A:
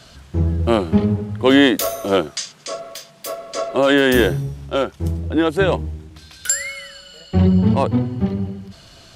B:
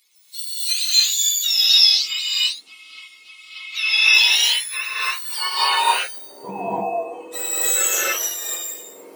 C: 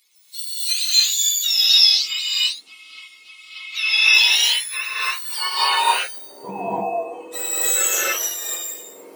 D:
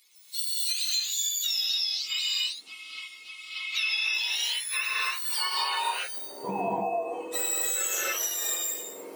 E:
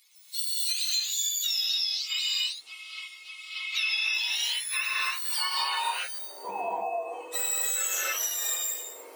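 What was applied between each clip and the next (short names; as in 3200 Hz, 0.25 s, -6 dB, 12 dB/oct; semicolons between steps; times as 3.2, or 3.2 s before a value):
spectrum mirrored in octaves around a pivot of 1200 Hz; non-linear reverb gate 0.33 s rising, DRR -8 dB; high-pass sweep 3900 Hz -> 530 Hz, 3.52–6.56; gain -7 dB
nothing audible
compressor 16:1, threshold -25 dBFS, peak gain reduction 17 dB
HPF 600 Hz 12 dB/oct; stuck buffer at 5.25/6.15, samples 512, times 2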